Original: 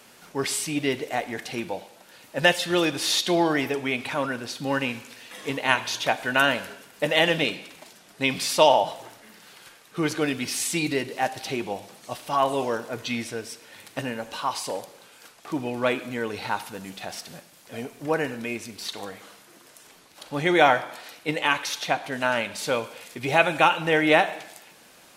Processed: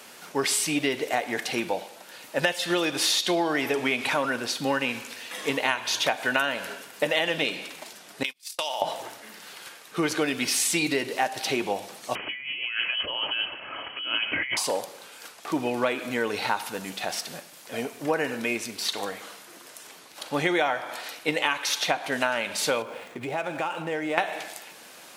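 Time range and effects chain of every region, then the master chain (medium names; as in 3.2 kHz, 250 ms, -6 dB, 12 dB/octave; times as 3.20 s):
3.31–4.30 s: companding laws mixed up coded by mu + brick-wall FIR low-pass 14 kHz
8.23–8.82 s: gate -24 dBFS, range -46 dB + tilt EQ +4.5 dB/octave + compression 16:1, threshold -30 dBFS
12.15–14.57 s: resonant low shelf 180 Hz +6.5 dB, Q 3 + compressor with a negative ratio -35 dBFS + frequency inversion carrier 3.1 kHz
22.82–24.18 s: median filter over 9 samples + tilt shelf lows +3.5 dB, about 1.2 kHz + compression 3:1, threshold -35 dBFS
whole clip: high-pass 300 Hz 6 dB/octave; compression 10:1, threshold -26 dBFS; trim +5.5 dB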